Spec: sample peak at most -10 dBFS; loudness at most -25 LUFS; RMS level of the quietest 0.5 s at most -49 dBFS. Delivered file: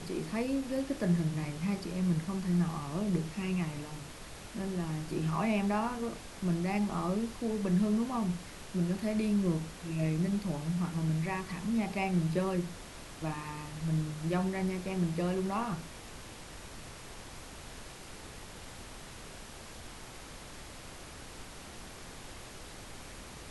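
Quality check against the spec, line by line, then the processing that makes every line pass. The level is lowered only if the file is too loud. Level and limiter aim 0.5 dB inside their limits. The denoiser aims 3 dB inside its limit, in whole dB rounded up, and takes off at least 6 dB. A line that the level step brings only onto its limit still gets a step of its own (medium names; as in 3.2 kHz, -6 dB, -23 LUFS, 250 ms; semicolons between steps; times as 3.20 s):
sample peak -18.5 dBFS: pass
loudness -33.5 LUFS: pass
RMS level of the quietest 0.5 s -47 dBFS: fail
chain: noise reduction 6 dB, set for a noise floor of -47 dBFS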